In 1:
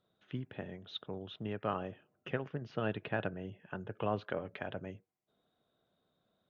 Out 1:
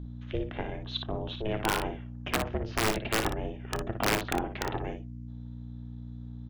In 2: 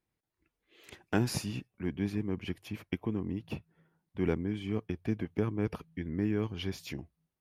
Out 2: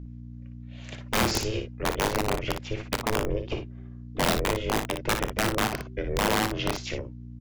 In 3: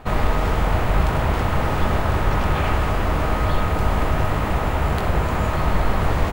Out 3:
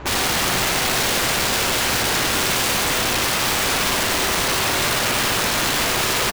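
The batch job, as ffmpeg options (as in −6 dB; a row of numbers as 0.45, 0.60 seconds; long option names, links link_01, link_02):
-af "highpass=72,aeval=exprs='val(0)*sin(2*PI*220*n/s)':channel_layout=same,aresample=16000,aeval=exprs='0.316*sin(PI/2*4.47*val(0)/0.316)':channel_layout=same,aresample=44100,aeval=exprs='val(0)+0.0251*(sin(2*PI*60*n/s)+sin(2*PI*2*60*n/s)/2+sin(2*PI*3*60*n/s)/3+sin(2*PI*4*60*n/s)/4+sin(2*PI*5*60*n/s)/5)':channel_layout=same,aeval=exprs='(mod(3.55*val(0)+1,2)-1)/3.55':channel_layout=same,aecho=1:1:29|58:0.133|0.422,volume=-6dB"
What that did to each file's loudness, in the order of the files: +8.0, +7.0, +3.5 LU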